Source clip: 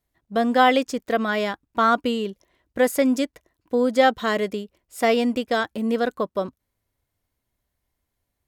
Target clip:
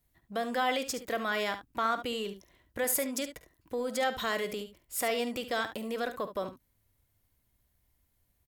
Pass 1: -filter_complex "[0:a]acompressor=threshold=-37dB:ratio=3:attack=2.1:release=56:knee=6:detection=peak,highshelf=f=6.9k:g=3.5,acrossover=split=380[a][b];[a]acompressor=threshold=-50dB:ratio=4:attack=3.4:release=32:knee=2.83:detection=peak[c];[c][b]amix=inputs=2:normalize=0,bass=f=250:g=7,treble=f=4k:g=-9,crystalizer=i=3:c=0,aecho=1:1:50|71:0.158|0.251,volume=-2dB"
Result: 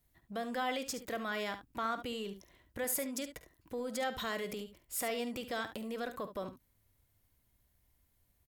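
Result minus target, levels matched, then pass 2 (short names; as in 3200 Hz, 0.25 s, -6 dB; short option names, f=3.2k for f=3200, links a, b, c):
compressor: peak gain reduction +6.5 dB
-filter_complex "[0:a]acompressor=threshold=-27.5dB:ratio=3:attack=2.1:release=56:knee=6:detection=peak,highshelf=f=6.9k:g=3.5,acrossover=split=380[a][b];[a]acompressor=threshold=-50dB:ratio=4:attack=3.4:release=32:knee=2.83:detection=peak[c];[c][b]amix=inputs=2:normalize=0,bass=f=250:g=7,treble=f=4k:g=-9,crystalizer=i=3:c=0,aecho=1:1:50|71:0.158|0.251,volume=-2dB"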